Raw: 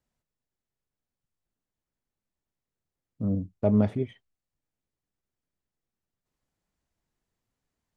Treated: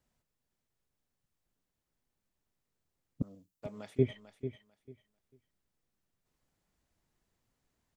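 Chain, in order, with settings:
0:03.22–0:03.99: first difference
repeating echo 445 ms, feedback 20%, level −11 dB
level +3 dB

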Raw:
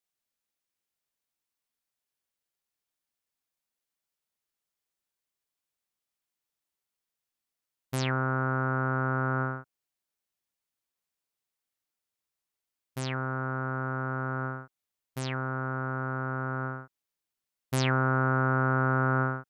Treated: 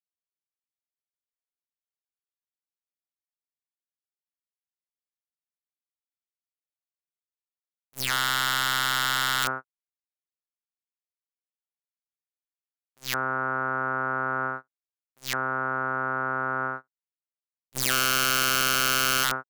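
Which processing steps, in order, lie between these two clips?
meter weighting curve A
wrap-around overflow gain 23 dB
noise gate −38 dBFS, range −29 dB
high-shelf EQ 10,000 Hz +6 dB, from 0:08.05 −4 dB, from 0:09.42 +3.5 dB
level +7 dB

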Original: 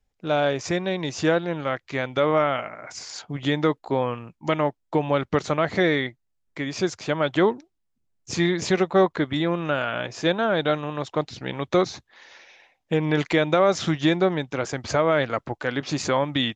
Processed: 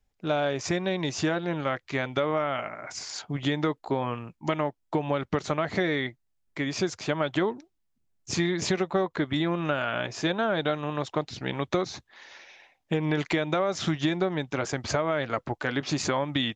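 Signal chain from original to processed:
notch filter 500 Hz, Q 12
downward compressor, threshold −22 dBFS, peak gain reduction 9 dB

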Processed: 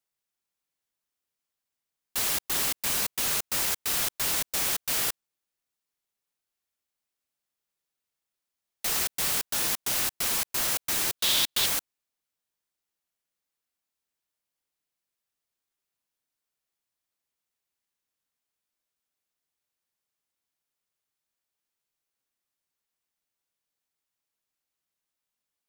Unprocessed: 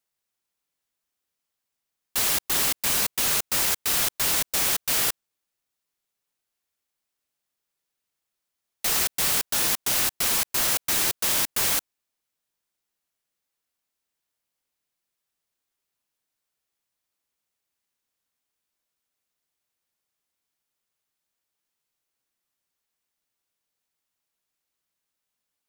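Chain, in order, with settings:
0:11.19–0:11.66: parametric band 3,600 Hz +13.5 dB 0.68 octaves
level −4 dB

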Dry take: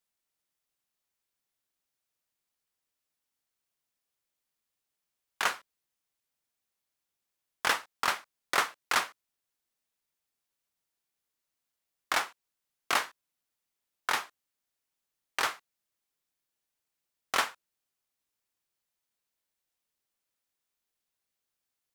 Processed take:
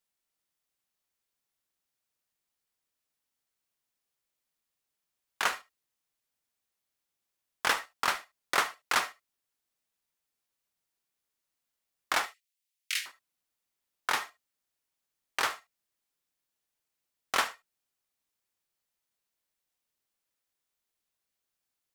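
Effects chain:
0:12.26–0:13.06: Butterworth high-pass 2,000 Hz 36 dB per octave
convolution reverb, pre-delay 50 ms, DRR 15.5 dB

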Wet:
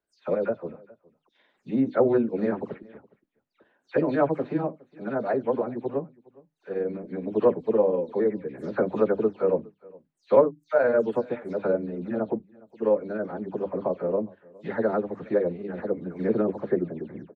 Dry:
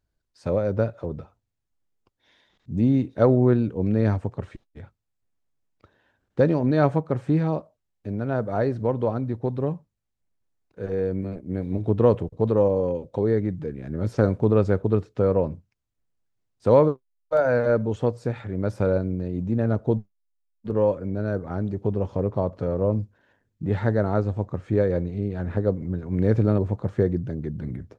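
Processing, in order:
every frequency bin delayed by itself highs early, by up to 228 ms
three-way crossover with the lows and the highs turned down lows −22 dB, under 190 Hz, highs −17 dB, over 3,600 Hz
mains-hum notches 50/100/150/200/250/300 Hz
time stretch by overlap-add 0.62×, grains 94 ms
single-tap delay 413 ms −24 dB
level +1.5 dB

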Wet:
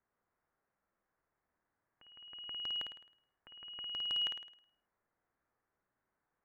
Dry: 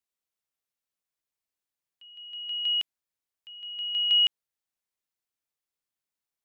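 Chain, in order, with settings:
Butterworth low-pass 1,800 Hz 36 dB per octave
in parallel at −1.5 dB: downward compressor, threshold −55 dBFS, peak gain reduction 12.5 dB
on the sum: hard clipping −38.5 dBFS, distortion −17 dB
flutter between parallel walls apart 9.1 metres, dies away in 0.59 s
level +7 dB

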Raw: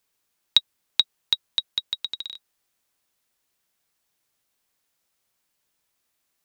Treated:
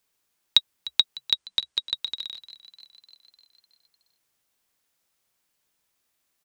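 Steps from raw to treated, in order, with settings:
0:01.33–0:01.95: Butterworth low-pass 9,700 Hz 96 dB per octave
on a send: echo with shifted repeats 301 ms, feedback 64%, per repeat +63 Hz, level −17.5 dB

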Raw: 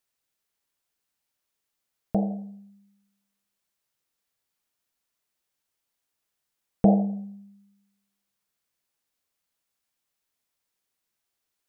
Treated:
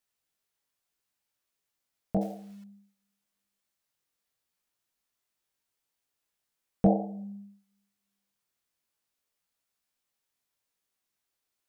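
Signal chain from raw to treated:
chorus effect 0.64 Hz, delay 17 ms, depth 5.2 ms
0:02.21–0:02.64: log-companded quantiser 6 bits
level +1 dB

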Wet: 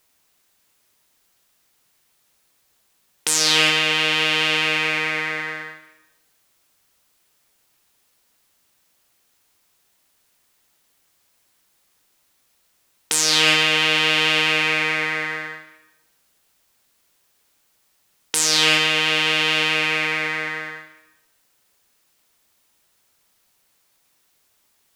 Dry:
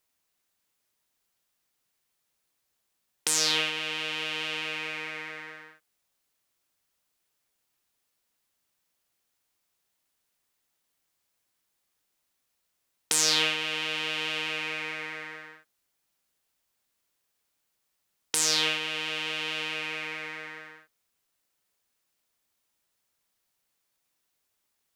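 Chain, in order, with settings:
on a send at −11 dB: convolution reverb RT60 0.90 s, pre-delay 93 ms
on the sum: boost into a limiter +14 dB
level −1 dB

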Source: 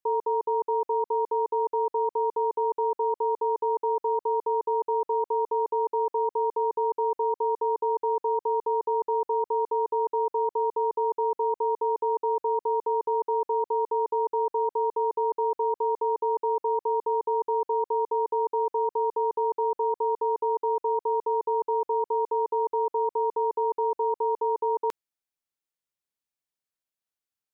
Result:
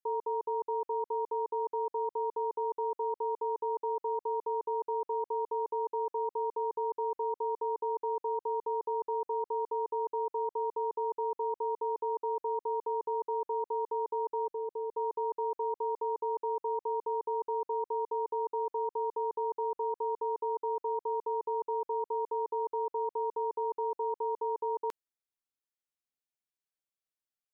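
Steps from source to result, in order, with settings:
0:14.47–0:14.97: parametric band 1,100 Hz −11.5 dB 0.77 octaves
level −7 dB

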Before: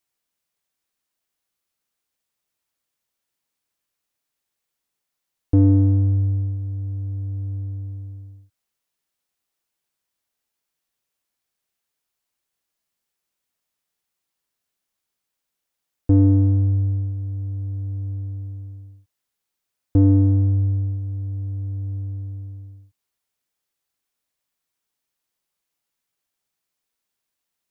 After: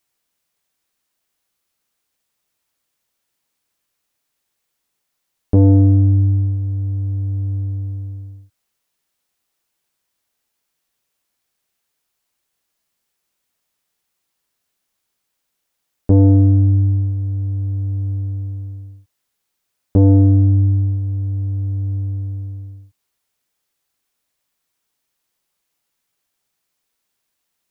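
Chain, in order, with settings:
saturating transformer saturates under 160 Hz
level +6.5 dB

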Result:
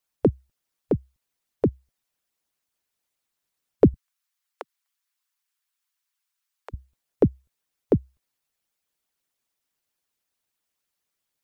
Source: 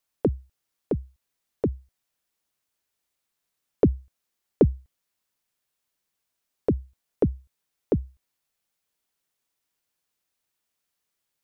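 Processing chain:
0:03.94–0:06.74: high-pass filter 950 Hz 24 dB per octave
harmonic and percussive parts rebalanced harmonic −15 dB
level +3.5 dB

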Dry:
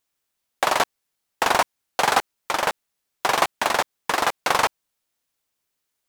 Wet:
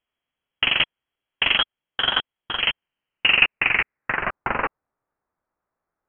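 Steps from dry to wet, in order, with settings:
0:01.57–0:02.60: ring modulation 1,300 Hz
high-pass filter sweep 310 Hz → 2,500 Hz, 0:02.50–0:04.32
voice inversion scrambler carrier 3,600 Hz
level −1 dB

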